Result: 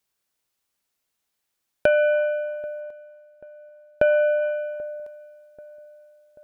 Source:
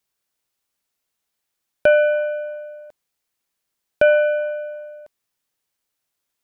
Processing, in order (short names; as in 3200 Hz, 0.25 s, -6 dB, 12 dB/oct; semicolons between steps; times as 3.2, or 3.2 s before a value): 2.8–4.41 high shelf 2700 Hz -> 2500 Hz -10.5 dB; compressor, threshold -15 dBFS, peak gain reduction 5.5 dB; darkening echo 0.786 s, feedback 59%, low-pass 1200 Hz, level -21 dB